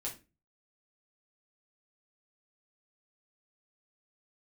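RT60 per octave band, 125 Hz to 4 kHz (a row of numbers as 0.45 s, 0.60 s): 0.50 s, 0.40 s, 0.30 s, 0.25 s, 0.25 s, 0.25 s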